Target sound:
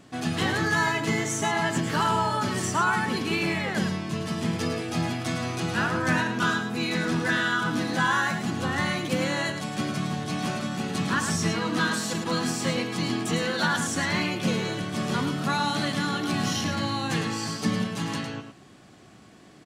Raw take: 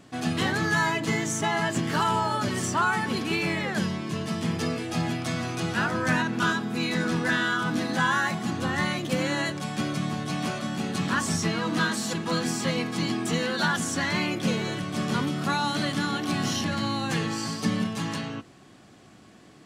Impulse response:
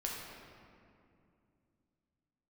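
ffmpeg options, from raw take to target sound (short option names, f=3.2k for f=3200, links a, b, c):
-af "aecho=1:1:107:0.398"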